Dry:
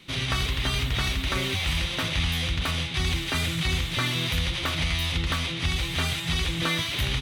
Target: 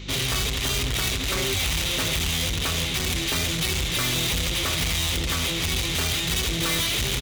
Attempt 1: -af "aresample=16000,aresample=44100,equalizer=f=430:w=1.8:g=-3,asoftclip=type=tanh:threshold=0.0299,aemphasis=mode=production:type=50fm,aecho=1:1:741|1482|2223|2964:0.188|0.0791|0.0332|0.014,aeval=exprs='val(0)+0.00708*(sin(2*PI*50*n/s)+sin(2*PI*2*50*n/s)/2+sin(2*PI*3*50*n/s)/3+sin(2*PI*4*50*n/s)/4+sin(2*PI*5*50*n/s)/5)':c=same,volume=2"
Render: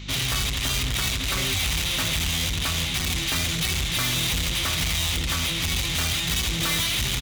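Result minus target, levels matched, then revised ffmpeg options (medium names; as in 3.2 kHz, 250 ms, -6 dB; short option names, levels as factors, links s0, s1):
500 Hz band -5.5 dB
-af "aresample=16000,aresample=44100,equalizer=f=430:w=1.8:g=7.5,asoftclip=type=tanh:threshold=0.0299,aemphasis=mode=production:type=50fm,aecho=1:1:741|1482|2223|2964:0.188|0.0791|0.0332|0.014,aeval=exprs='val(0)+0.00708*(sin(2*PI*50*n/s)+sin(2*PI*2*50*n/s)/2+sin(2*PI*3*50*n/s)/3+sin(2*PI*4*50*n/s)/4+sin(2*PI*5*50*n/s)/5)':c=same,volume=2"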